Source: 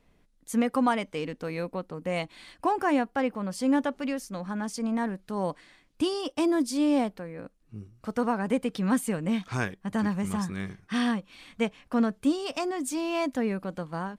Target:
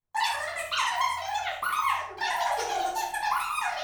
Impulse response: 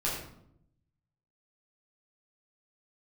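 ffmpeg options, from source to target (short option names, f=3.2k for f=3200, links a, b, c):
-filter_complex "[0:a]asetrate=163170,aresample=44100,agate=range=-26dB:threshold=-51dB:ratio=16:detection=peak[a];[1:a]atrim=start_sample=2205,asetrate=52920,aresample=44100[b];[a][b]afir=irnorm=-1:irlink=0,volume=-5.5dB"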